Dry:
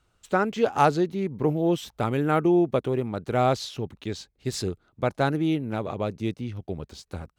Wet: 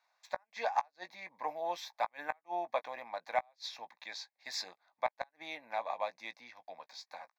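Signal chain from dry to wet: Bessel high-pass 1200 Hz, order 4; tilt -4 dB/oct; flipped gate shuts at -20 dBFS, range -40 dB; fixed phaser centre 2000 Hz, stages 8; doubler 17 ms -13 dB; gain +6.5 dB

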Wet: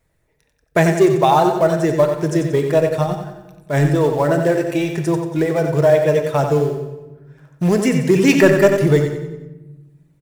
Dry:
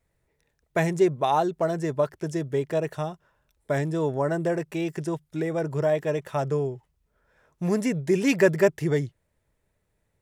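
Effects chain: 3.06–3.86 transient shaper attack -9 dB, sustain +11 dB; reverb removal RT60 1 s; in parallel at -11.5 dB: companded quantiser 4-bit; on the sum: soft clip -9.5 dBFS, distortion -20 dB; on a send: feedback echo 91 ms, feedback 44%, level -7 dB; on the sum: shoebox room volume 670 m³, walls mixed, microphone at 0.56 m; gain +7.5 dB

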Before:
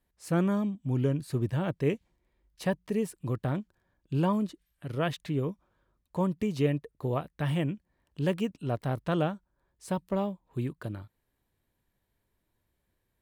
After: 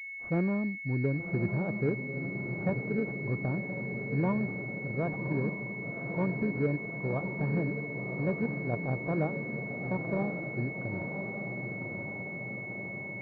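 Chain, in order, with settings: on a send: diffused feedback echo 1.092 s, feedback 68%, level -6 dB; on the sum: pulse-width modulation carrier 2200 Hz; gain -2.5 dB

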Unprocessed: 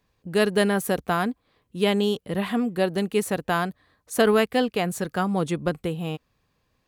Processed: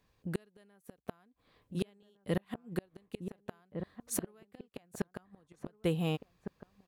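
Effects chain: flipped gate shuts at -16 dBFS, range -39 dB; outdoor echo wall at 250 m, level -7 dB; gain -2.5 dB

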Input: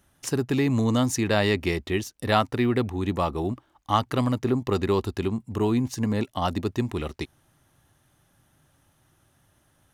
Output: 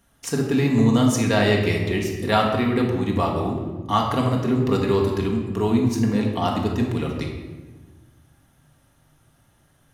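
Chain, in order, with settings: shoebox room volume 840 m³, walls mixed, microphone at 1.7 m

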